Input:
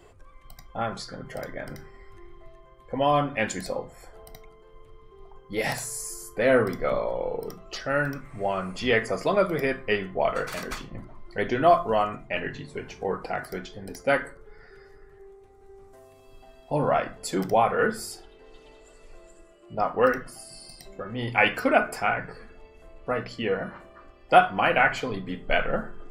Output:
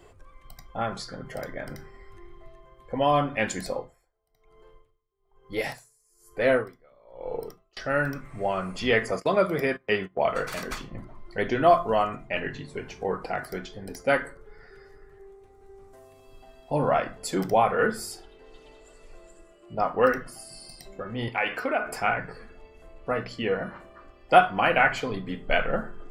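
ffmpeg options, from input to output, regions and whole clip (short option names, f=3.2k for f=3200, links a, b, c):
-filter_complex "[0:a]asettb=1/sr,asplit=3[a][b][c];[a]atrim=end=3.744[d];[b]atrim=start=3.74:end=7.77,asetpts=PTS-STARTPTS,afade=t=in:d=0.004:c=qsin,afade=t=out:st=4.026:d=0.004:c=qsin,equalizer=f=200:w=2.8:g=-6,aeval=exprs='val(0)*pow(10,-33*(0.5-0.5*cos(2*PI*1.1*n/s))/20)':c=same[e];[c]atrim=start=7.766[f];[d][e]acrossfade=d=0.004:c1=hsin:c2=qsin[g];[g][f]acrossfade=d=0.004:c1=qsin:c2=hsin,asettb=1/sr,asplit=3[h][i][j];[h]atrim=end=9.114[k];[i]atrim=start=9.11:end=10.34,asetpts=PTS-STARTPTS,afade=t=in:d=0.004:c=qsin,afade=t=out:st=1.226:d=0.004:c=qsin,highpass=63,agate=range=-21dB:threshold=-35dB:ratio=16:release=100:detection=peak[l];[j]atrim=start=10.336[m];[k][l]acrossfade=d=0.004:c1=hsin:c2=qsin[n];[n][m]acrossfade=d=0.004:c1=qsin:c2=hsin,asettb=1/sr,asplit=3[o][p][q];[o]atrim=end=21.284[r];[p]atrim=start=21.28:end=21.87,asetpts=PTS-STARTPTS,afade=t=in:d=0.004:c=qsin,afade=t=out:st=0.586:d=0.004:c=qsin,bass=f=250:g=-10,treble=f=4k:g=-8,acompressor=threshold=-25dB:ratio=2:attack=3.2:release=140:knee=1:detection=peak[s];[q]atrim=start=21.866[t];[r][s]acrossfade=d=0.004:c1=hsin:c2=qsin[u];[u][t]acrossfade=d=0.004:c1=qsin:c2=hsin"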